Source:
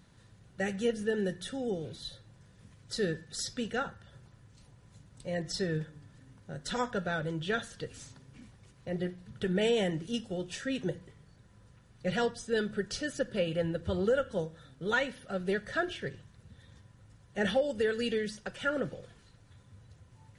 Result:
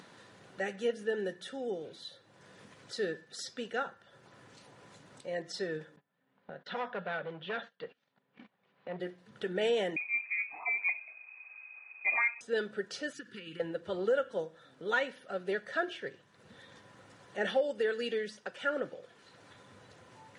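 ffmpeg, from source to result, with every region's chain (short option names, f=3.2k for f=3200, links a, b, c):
-filter_complex "[0:a]asettb=1/sr,asplit=3[a][b][c];[a]atrim=end=5.964[d];[b]atrim=start=5.96:end=9,asetpts=PTS-STARTPTS,afade=t=in:d=0.004:c=qsin,afade=t=out:st=3.036:d=0.004:c=qsin,asoftclip=type=hard:threshold=-30.5dB,highpass=160,equalizer=f=180:t=q:w=4:g=7,equalizer=f=320:t=q:w=4:g=-8,equalizer=f=750:t=q:w=4:g=3,lowpass=f=3.7k:w=0.5412,lowpass=f=3.7k:w=1.3066,agate=range=-24dB:threshold=-52dB:ratio=16:release=100:detection=peak[e];[c]atrim=start=8.996[f];[d][e]acrossfade=d=0.004:c1=hsin:c2=qsin[g];[g][f]acrossfade=d=0.004:c1=qsin:c2=hsin,asettb=1/sr,asplit=3[h][i][j];[h]atrim=end=9.964[k];[i]atrim=start=9.96:end=12.41,asetpts=PTS-STARTPTS,afade=t=in:d=0.004:c=qsin,afade=t=out:st=2.446:d=0.004:c=qsin,lowshelf=f=180:g=9,lowpass=f=2.2k:t=q:w=0.5098,lowpass=f=2.2k:t=q:w=0.6013,lowpass=f=2.2k:t=q:w=0.9,lowpass=f=2.2k:t=q:w=2.563,afreqshift=-2600[l];[j]atrim=start=12.406[m];[k][l]acrossfade=d=0.004:c1=hsin:c2=qsin[n];[n][m]acrossfade=d=0.004:c1=qsin:c2=hsin,asettb=1/sr,asplit=3[o][p][q];[o]atrim=end=13.134[r];[p]atrim=start=13.13:end=13.6,asetpts=PTS-STARTPTS,afade=t=in:d=0.004:c=qsin,afade=t=out:st=0.466:d=0.004:c=qsin,acompressor=threshold=-32dB:ratio=5:attack=3.2:release=140:knee=1:detection=peak,asuperstop=centerf=650:order=4:qfactor=0.72[s];[q]atrim=start=13.596[t];[r][s]acrossfade=d=0.004:c1=hsin:c2=qsin[u];[u][t]acrossfade=d=0.004:c1=qsin:c2=hsin,highpass=350,acompressor=mode=upward:threshold=-43dB:ratio=2.5,lowpass=f=3.3k:p=1"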